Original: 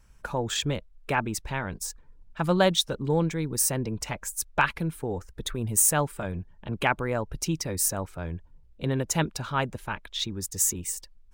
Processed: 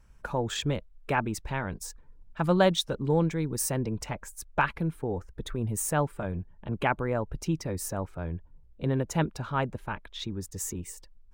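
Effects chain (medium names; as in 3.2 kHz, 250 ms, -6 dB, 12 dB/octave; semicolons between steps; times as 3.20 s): treble shelf 2.5 kHz -6.5 dB, from 4.06 s -12 dB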